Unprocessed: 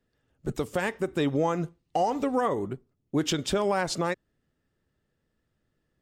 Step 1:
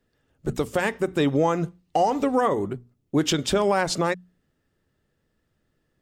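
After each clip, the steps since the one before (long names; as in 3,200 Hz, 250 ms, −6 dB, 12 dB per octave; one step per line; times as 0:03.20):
mains-hum notches 60/120/180/240 Hz
level +4.5 dB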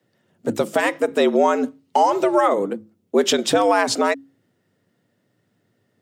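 frequency shifter +94 Hz
level +4.5 dB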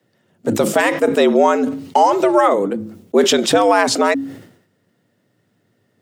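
level that may fall only so fast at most 88 dB per second
level +3.5 dB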